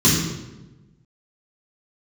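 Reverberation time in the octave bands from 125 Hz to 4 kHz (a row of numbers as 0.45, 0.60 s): 1.5, 1.4, 1.2, 0.95, 0.85, 0.75 s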